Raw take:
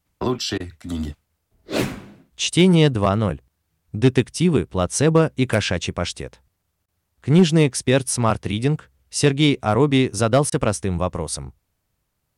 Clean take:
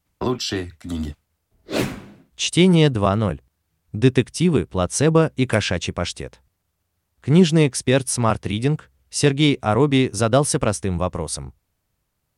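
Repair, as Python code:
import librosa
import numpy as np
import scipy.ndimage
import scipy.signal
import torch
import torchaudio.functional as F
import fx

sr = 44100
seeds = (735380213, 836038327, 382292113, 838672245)

y = fx.fix_declip(x, sr, threshold_db=-6.5)
y = fx.fix_interpolate(y, sr, at_s=(0.58, 6.86, 10.5), length_ms=20.0)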